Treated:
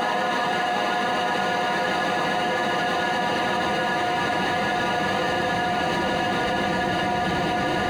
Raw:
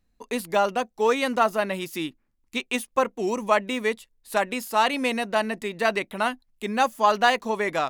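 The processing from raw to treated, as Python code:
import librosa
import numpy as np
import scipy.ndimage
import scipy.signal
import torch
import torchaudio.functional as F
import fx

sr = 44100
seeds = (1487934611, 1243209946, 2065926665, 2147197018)

y = fx.tape_stop_end(x, sr, length_s=0.48)
y = fx.paulstretch(y, sr, seeds[0], factor=49.0, window_s=1.0, from_s=7.33)
y = fx.level_steps(y, sr, step_db=14)
y = F.gain(torch.from_numpy(y), 4.5).numpy()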